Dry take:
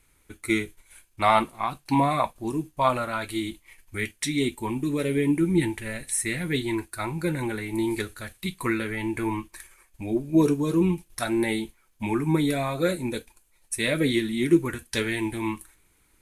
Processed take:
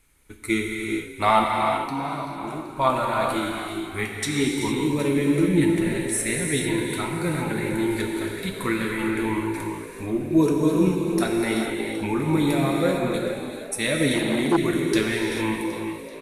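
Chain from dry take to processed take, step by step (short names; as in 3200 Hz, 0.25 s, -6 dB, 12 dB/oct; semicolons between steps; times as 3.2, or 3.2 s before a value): 1.5–2.69 compressor 2:1, threshold -39 dBFS, peak gain reduction 12 dB; 12.72–13.14 LPF 3000 Hz 6 dB/oct; frequency-shifting echo 0.384 s, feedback 52%, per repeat +55 Hz, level -12.5 dB; reverb, pre-delay 3 ms, DRR 0 dB; 14.14–14.58 core saturation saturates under 740 Hz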